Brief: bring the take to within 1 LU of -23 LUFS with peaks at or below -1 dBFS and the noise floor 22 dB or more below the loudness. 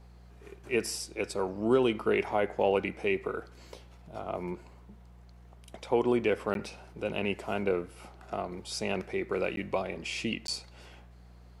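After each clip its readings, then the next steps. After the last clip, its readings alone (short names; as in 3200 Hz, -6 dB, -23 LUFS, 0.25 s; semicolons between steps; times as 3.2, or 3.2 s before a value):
dropouts 3; longest dropout 12 ms; hum 60 Hz; harmonics up to 180 Hz; hum level -51 dBFS; loudness -31.5 LUFS; peak -13.5 dBFS; loudness target -23.0 LUFS
-> interpolate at 6.54/9.56/10.47, 12 ms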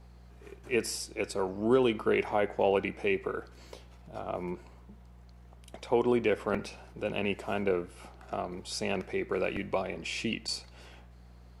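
dropouts 0; hum 60 Hz; harmonics up to 180 Hz; hum level -51 dBFS
-> de-hum 60 Hz, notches 3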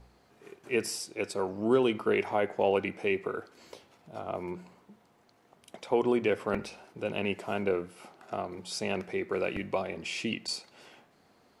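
hum none; loudness -31.5 LUFS; peak -13.5 dBFS; loudness target -23.0 LUFS
-> gain +8.5 dB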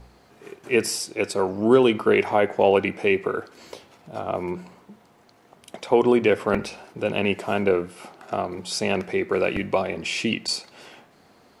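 loudness -23.0 LUFS; peak -5.0 dBFS; noise floor -56 dBFS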